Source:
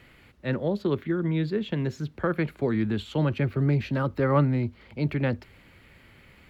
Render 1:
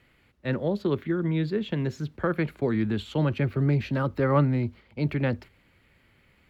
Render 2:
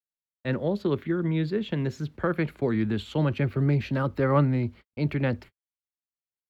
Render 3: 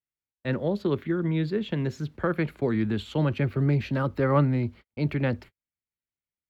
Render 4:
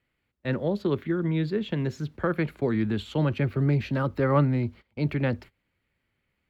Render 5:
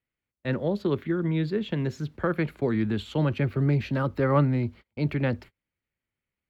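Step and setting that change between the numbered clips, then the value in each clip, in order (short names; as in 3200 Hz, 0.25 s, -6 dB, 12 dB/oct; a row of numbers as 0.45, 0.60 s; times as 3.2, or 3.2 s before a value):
gate, range: -8, -60, -48, -23, -35 dB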